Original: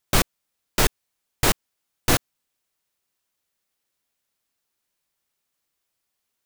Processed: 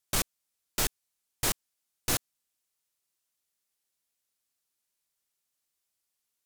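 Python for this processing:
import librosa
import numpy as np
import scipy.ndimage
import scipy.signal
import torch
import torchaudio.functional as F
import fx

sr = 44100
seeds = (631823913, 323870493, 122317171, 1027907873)

y = fx.peak_eq(x, sr, hz=9400.0, db=8.0, octaves=2.3)
y = 10.0 ** (-12.0 / 20.0) * np.tanh(y / 10.0 ** (-12.0 / 20.0))
y = y * 10.0 ** (-9.0 / 20.0)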